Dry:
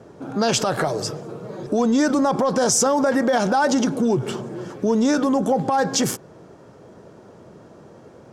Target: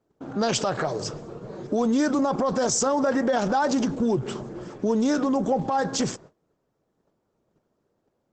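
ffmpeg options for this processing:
-af "agate=range=0.0631:threshold=0.01:ratio=16:detection=peak,volume=0.668" -ar 48000 -c:a libopus -b:a 12k

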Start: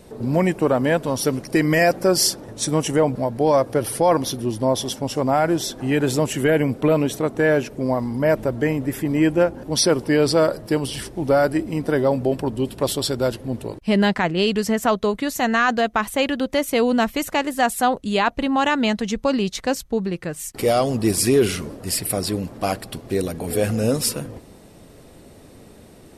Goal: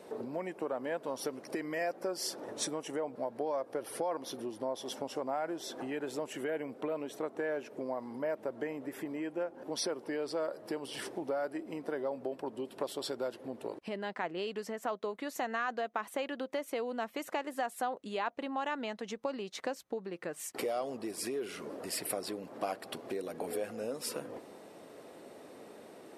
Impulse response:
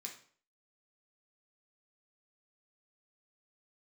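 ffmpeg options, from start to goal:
-af "highshelf=f=2700:g=-10.5,acompressor=threshold=0.0316:ratio=10,highpass=390"

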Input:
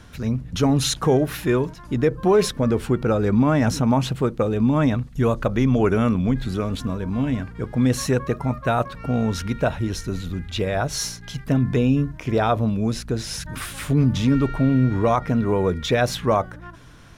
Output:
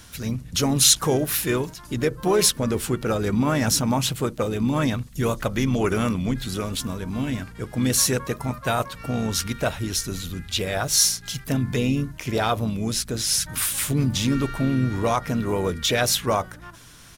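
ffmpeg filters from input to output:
-filter_complex "[0:a]crystalizer=i=5:c=0,asplit=3[s0][s1][s2];[s1]asetrate=37084,aresample=44100,atempo=1.18921,volume=0.251[s3];[s2]asetrate=55563,aresample=44100,atempo=0.793701,volume=0.126[s4];[s0][s3][s4]amix=inputs=3:normalize=0,volume=0.596"

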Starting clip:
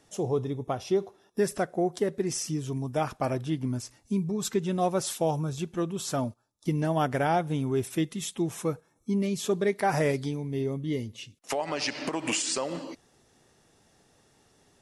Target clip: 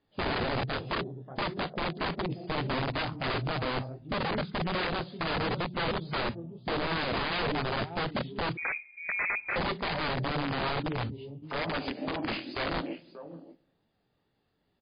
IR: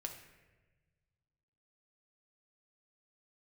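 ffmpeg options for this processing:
-filter_complex "[0:a]afwtdn=0.0282,lowshelf=f=260:g=4,alimiter=level_in=1.12:limit=0.0631:level=0:latency=1:release=18,volume=0.891,flanger=delay=17:depth=7.8:speed=2.3,aecho=1:1:585:0.2,asplit=2[s0][s1];[1:a]atrim=start_sample=2205,asetrate=57330,aresample=44100[s2];[s1][s2]afir=irnorm=-1:irlink=0,volume=0.501[s3];[s0][s3]amix=inputs=2:normalize=0,aeval=exprs='(mod(28.2*val(0)+1,2)-1)/28.2':c=same,asettb=1/sr,asplit=3[s4][s5][s6];[s4]atrim=end=8.574[s7];[s5]atrim=start=8.57:end=9.56,asetpts=PTS-STARTPTS,afade=t=in:d=0.004:c=qsin,afade=t=out:st=0.986:d=0.004:c=qsin,lowpass=f=2200:t=q:w=0.5098,lowpass=f=2200:t=q:w=0.6013,lowpass=f=2200:t=q:w=0.9,lowpass=f=2200:t=q:w=2.563,afreqshift=-2600[s8];[s6]atrim=start=9.556[s9];[s7][s8]acrossfade=d=0.004:c1=hsin:c2=qsin[s10];[s10][s9]acrossfade=d=0.004:c1=qsin:c2=hsin,volume=1.58" -ar 11025 -c:a libmp3lame -b:a 24k

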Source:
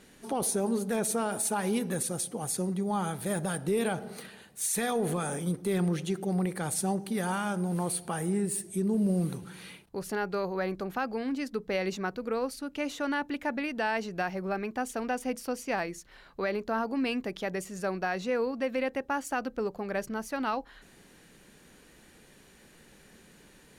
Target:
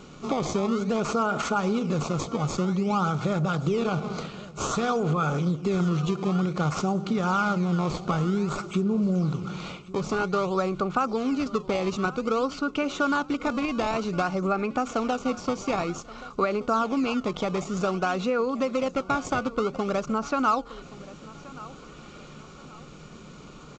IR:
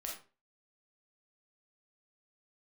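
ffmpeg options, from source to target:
-filter_complex "[0:a]equalizer=f=150:w=7.6:g=9.5,asplit=2[s0][s1];[s1]acrusher=samples=18:mix=1:aa=0.000001:lfo=1:lforange=28.8:lforate=0.53,volume=0.668[s2];[s0][s2]amix=inputs=2:normalize=0,acompressor=threshold=0.0316:ratio=4,superequalizer=10b=2.51:11b=0.316,asplit=2[s3][s4];[s4]aecho=0:1:1126|2252|3378:0.112|0.0393|0.0137[s5];[s3][s5]amix=inputs=2:normalize=0,volume=2.11" -ar 16000 -c:a g722

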